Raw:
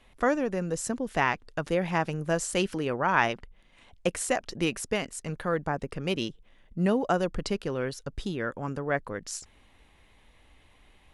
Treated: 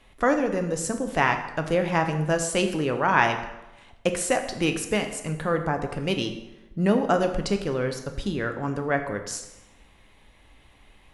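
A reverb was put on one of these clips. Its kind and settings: plate-style reverb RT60 1 s, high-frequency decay 0.75×, DRR 6 dB; trim +3 dB

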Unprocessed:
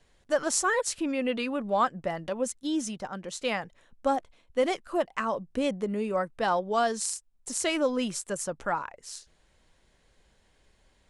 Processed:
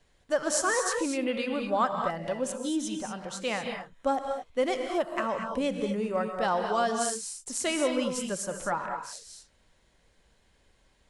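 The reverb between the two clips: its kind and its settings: gated-style reverb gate 260 ms rising, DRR 4 dB; trim -1.5 dB

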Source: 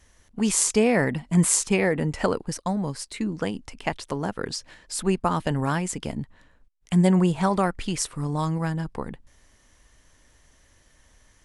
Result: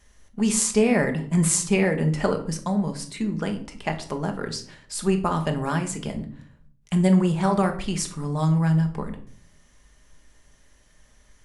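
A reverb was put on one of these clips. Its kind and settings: simulated room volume 630 m³, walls furnished, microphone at 1.3 m; trim -1.5 dB

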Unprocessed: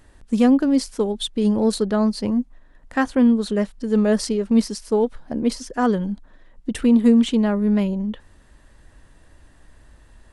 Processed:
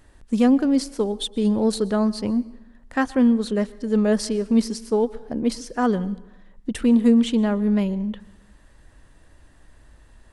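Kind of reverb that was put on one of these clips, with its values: plate-style reverb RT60 0.91 s, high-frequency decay 0.8×, pre-delay 105 ms, DRR 19.5 dB; trim -1.5 dB

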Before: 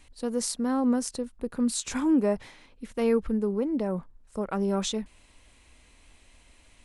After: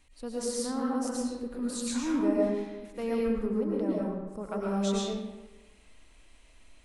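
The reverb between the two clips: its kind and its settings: algorithmic reverb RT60 1.1 s, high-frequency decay 0.65×, pre-delay 75 ms, DRR -4.5 dB; trim -8 dB

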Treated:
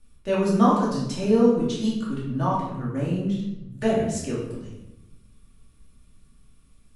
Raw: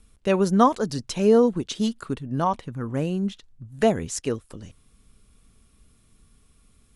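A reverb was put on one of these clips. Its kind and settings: simulated room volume 330 m³, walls mixed, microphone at 2.5 m; trim -9 dB

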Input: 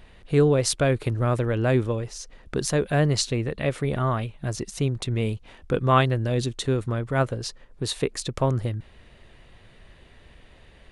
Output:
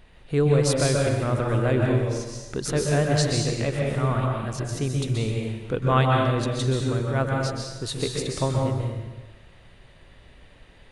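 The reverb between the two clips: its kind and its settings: plate-style reverb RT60 1.2 s, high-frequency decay 0.9×, pre-delay 115 ms, DRR -1 dB; trim -3 dB

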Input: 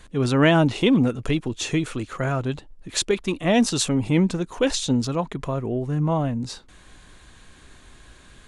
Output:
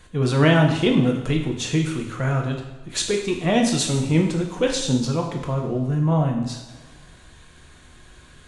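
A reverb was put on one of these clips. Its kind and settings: two-slope reverb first 0.77 s, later 2.4 s, DRR 1 dB; trim -2 dB

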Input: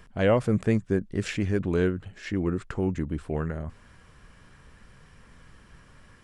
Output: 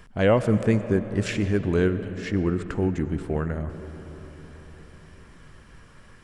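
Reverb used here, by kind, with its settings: algorithmic reverb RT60 4.9 s, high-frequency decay 0.4×, pre-delay 55 ms, DRR 11 dB; trim +2.5 dB

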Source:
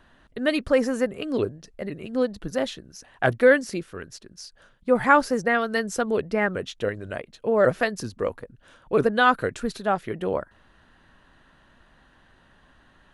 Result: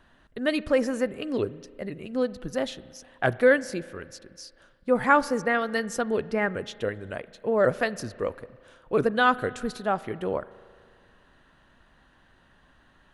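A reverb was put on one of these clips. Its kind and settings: spring tank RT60 2.1 s, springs 36 ms, chirp 30 ms, DRR 18 dB; trim -2.5 dB

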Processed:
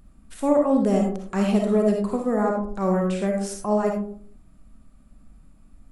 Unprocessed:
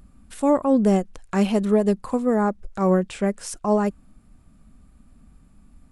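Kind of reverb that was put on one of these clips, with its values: algorithmic reverb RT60 0.53 s, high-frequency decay 0.35×, pre-delay 20 ms, DRR 1 dB; trim -3.5 dB

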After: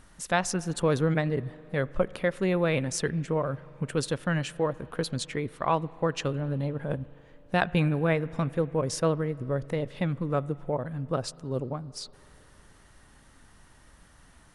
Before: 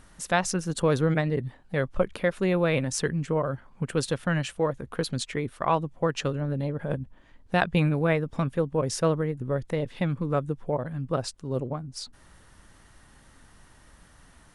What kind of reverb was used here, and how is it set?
spring tank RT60 3.5 s, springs 36/43 ms, chirp 60 ms, DRR 19.5 dB; trim -1.5 dB

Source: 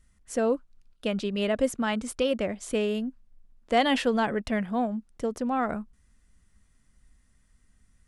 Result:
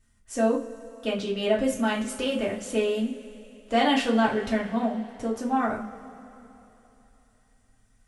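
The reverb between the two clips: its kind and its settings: two-slope reverb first 0.3 s, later 3.3 s, from -21 dB, DRR -5 dB; trim -4.5 dB

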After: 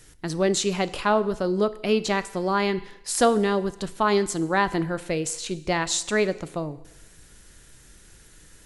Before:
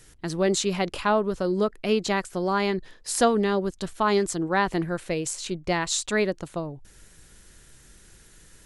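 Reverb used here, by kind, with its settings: FDN reverb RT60 0.93 s, low-frequency decay 0.8×, high-frequency decay 1×, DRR 13.5 dB; trim +1 dB

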